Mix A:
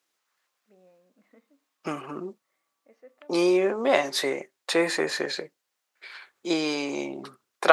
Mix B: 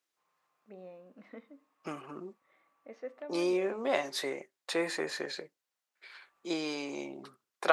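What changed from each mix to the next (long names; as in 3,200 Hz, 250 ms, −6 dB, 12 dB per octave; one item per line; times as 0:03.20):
first voice +9.5 dB
second voice −8.5 dB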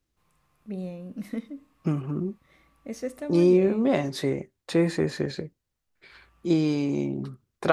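first voice: remove head-to-tape spacing loss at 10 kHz 43 dB
master: remove high-pass filter 660 Hz 12 dB per octave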